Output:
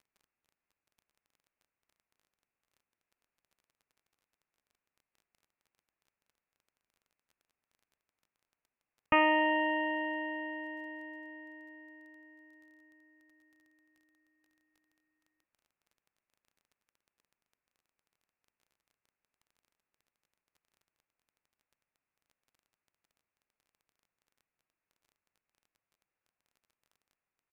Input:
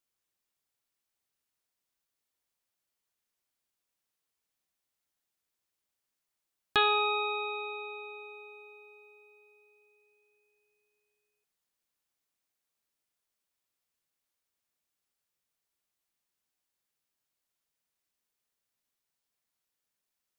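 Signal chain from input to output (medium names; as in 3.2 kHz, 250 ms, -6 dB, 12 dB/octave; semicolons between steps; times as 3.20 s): resampled via 8 kHz; crackle 28 per s -56 dBFS; speed mistake 45 rpm record played at 33 rpm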